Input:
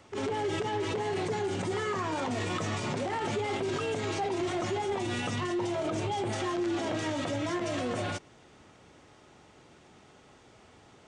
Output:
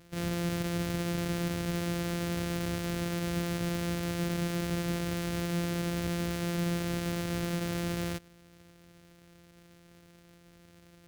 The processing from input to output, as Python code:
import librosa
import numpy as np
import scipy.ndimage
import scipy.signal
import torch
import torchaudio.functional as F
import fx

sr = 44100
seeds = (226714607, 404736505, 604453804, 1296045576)

y = np.r_[np.sort(x[:len(x) // 256 * 256].reshape(-1, 256), axis=1).ravel(), x[len(x) // 256 * 256:]]
y = fx.peak_eq(y, sr, hz=930.0, db=-8.5, octaves=0.78)